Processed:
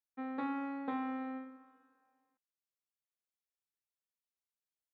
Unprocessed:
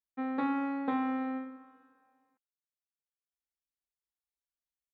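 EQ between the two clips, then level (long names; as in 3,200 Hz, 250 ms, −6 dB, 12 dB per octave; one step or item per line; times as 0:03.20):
low-shelf EQ 180 Hz −3.5 dB
−5.5 dB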